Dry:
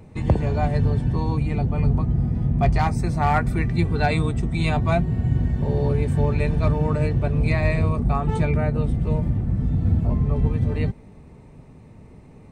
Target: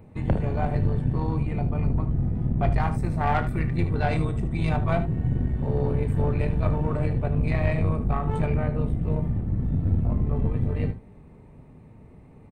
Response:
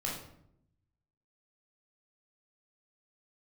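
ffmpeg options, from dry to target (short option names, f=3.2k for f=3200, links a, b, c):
-af "equalizer=f=5.8k:t=o:w=1.3:g=-11.5,aeval=exprs='(tanh(5.01*val(0)+0.55)-tanh(0.55))/5.01':c=same,aecho=1:1:32|76:0.237|0.251,volume=-1dB"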